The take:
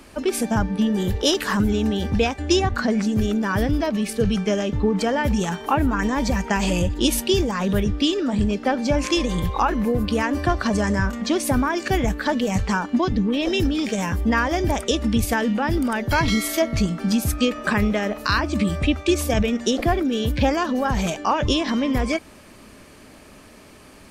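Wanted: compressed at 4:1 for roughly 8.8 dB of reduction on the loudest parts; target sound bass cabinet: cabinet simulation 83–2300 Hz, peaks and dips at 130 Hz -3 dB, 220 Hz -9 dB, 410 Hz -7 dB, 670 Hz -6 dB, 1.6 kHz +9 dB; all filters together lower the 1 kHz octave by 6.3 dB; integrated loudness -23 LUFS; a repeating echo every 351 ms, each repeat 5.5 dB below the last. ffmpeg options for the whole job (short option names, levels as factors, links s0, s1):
-af "equalizer=f=1000:t=o:g=-7.5,acompressor=threshold=0.0501:ratio=4,highpass=f=83:w=0.5412,highpass=f=83:w=1.3066,equalizer=f=130:t=q:w=4:g=-3,equalizer=f=220:t=q:w=4:g=-9,equalizer=f=410:t=q:w=4:g=-7,equalizer=f=670:t=q:w=4:g=-6,equalizer=f=1600:t=q:w=4:g=9,lowpass=f=2300:w=0.5412,lowpass=f=2300:w=1.3066,aecho=1:1:351|702|1053|1404|1755|2106|2457:0.531|0.281|0.149|0.079|0.0419|0.0222|0.0118,volume=2.51"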